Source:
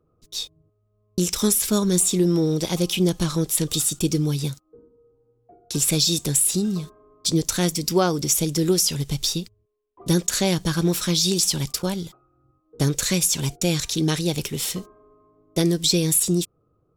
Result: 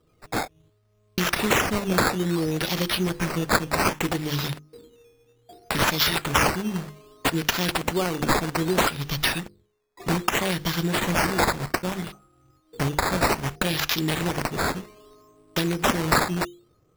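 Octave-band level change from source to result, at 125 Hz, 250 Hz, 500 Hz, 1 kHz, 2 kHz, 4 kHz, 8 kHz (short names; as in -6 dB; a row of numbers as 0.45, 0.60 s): -4.5, -4.0, -1.5, +9.5, +10.5, -2.5, -10.5 dB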